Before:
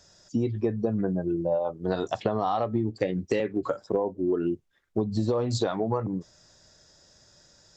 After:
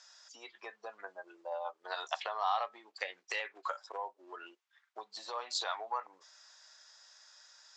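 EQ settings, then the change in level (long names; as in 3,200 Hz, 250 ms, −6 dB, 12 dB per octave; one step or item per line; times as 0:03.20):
high-pass filter 940 Hz 24 dB per octave
dynamic equaliser 1,300 Hz, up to −3 dB, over −49 dBFS, Q 1.3
high-frequency loss of the air 71 metres
+3.0 dB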